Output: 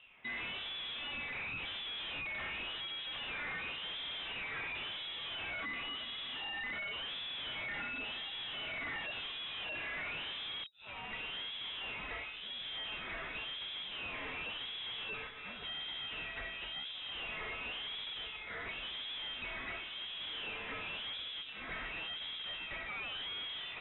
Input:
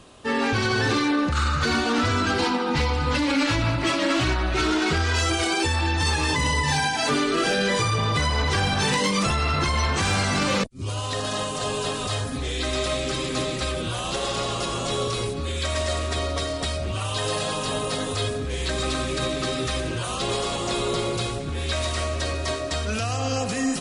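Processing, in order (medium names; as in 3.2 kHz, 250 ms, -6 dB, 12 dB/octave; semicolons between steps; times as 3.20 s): wah-wah 0.93 Hz 460–1800 Hz, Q 3.7; peak limiter -25.5 dBFS, peak gain reduction 5 dB; valve stage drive 43 dB, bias 0.65; treble shelf 3 kHz +11.5 dB; frequency inversion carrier 3.8 kHz; trim +1.5 dB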